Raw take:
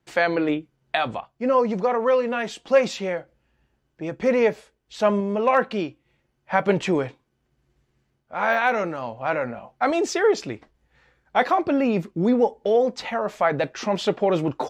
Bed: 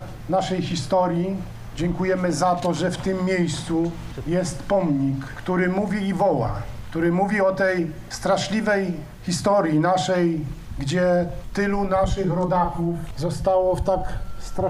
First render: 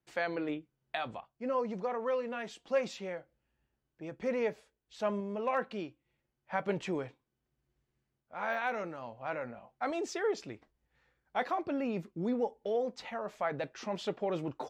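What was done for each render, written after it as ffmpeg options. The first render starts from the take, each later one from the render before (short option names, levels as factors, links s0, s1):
-af "volume=0.224"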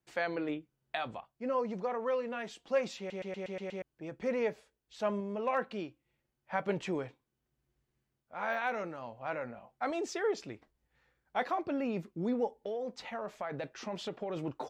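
-filter_complex "[0:a]asettb=1/sr,asplit=3[s0][s1][s2];[s0]atrim=end=12.624[s3];[s1]atrim=start=12.62:end=14.37,asetpts=PTS-STARTPTS,afade=t=in:d=0.004:c=qsin,afade=t=out:st=1.746:d=0.004:c=qsin,acompressor=threshold=0.0224:ratio=6:attack=3.2:release=140:knee=1:detection=peak[s4];[s2]atrim=start=14.366[s5];[s3][s4]acrossfade=d=0.004:c1=hsin:c2=qsin[s6];[s6][s5]acrossfade=d=0.004:c1=qsin:c2=hsin,asplit=8[s7][s8][s9][s10][s11][s12][s13][s14];[s7]atrim=end=3.102[s15];[s8]atrim=start=2.978:end=3.102[s16];[s9]atrim=start=2.978:end=3.102[s17];[s10]atrim=start=2.978:end=3.102[s18];[s11]atrim=start=2.978:end=3.102[s19];[s12]atrim=start=2.978:end=3.102[s20];[s13]atrim=start=2.978:end=3.102[s21];[s14]atrim=start=3.818[s22];[s15][s16]acrossfade=d=0.004:c1=hsin:c2=hsin[s23];[s23][s17]acrossfade=d=0.004:c1=hsin:c2=hsin[s24];[s24][s18]acrossfade=d=0.004:c1=hsin:c2=hsin[s25];[s25][s19]acrossfade=d=0.004:c1=hsin:c2=hsin[s26];[s26][s20]acrossfade=d=0.004:c1=hsin:c2=hsin[s27];[s27][s21]acrossfade=d=0.004:c1=hsin:c2=hsin[s28];[s28][s22]acrossfade=d=0.004:c1=hsin:c2=hsin"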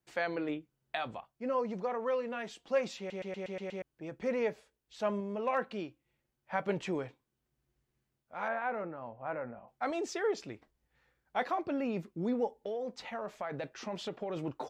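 -filter_complex "[0:a]asettb=1/sr,asplit=3[s0][s1][s2];[s0]atrim=end=8.484[s3];[s1]atrim=start=8.48:end=9.68,asetpts=PTS-STARTPTS,afade=t=in:d=0.004:c=qsin,afade=t=out:st=1.196:d=0.004:c=qsin,lowpass=1600[s4];[s2]atrim=start=9.676[s5];[s3][s4]acrossfade=d=0.004:c1=hsin:c2=qsin[s6];[s6][s5]acrossfade=d=0.004:c1=qsin:c2=hsin"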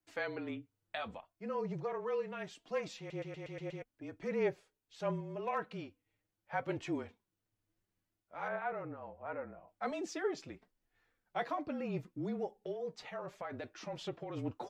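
-af "flanger=delay=2.7:depth=3.6:regen=48:speed=0.73:shape=sinusoidal,afreqshift=-34"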